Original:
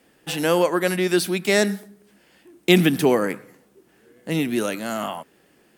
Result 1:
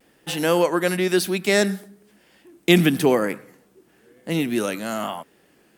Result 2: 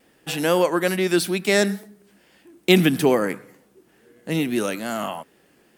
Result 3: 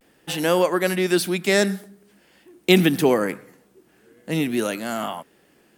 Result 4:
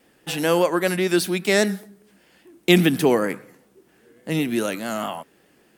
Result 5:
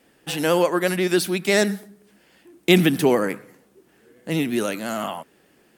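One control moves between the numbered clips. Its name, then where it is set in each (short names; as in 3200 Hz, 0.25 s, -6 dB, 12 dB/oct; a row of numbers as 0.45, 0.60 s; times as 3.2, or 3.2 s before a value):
vibrato, rate: 1, 2.3, 0.45, 5, 14 Hz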